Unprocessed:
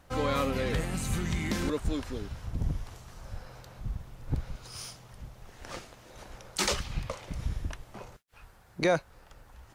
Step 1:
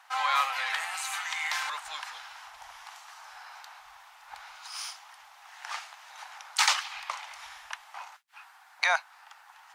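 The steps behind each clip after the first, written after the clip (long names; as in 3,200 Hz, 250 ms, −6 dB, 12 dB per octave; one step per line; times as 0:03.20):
elliptic high-pass filter 800 Hz, stop band 50 dB
high-shelf EQ 6,400 Hz −8.5 dB
level +8.5 dB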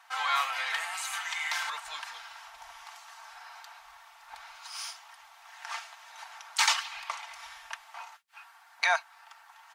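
comb filter 4.4 ms, depth 57%
level −2 dB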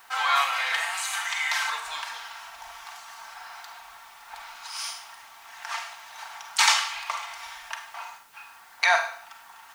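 four-comb reverb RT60 0.54 s, combs from 33 ms, DRR 5 dB
background noise white −64 dBFS
level +4.5 dB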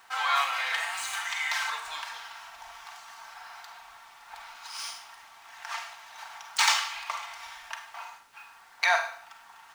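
running median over 3 samples
level −3 dB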